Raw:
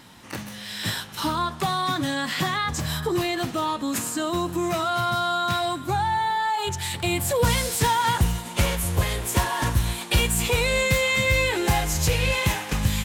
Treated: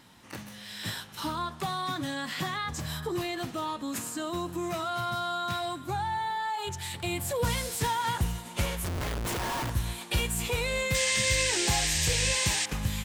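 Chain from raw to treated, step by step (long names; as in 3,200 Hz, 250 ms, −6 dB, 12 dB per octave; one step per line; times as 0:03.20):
0:08.84–0:09.70: comparator with hysteresis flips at −28 dBFS
0:10.94–0:12.66: sound drawn into the spectrogram noise 1,600–9,100 Hz −22 dBFS
level −7.5 dB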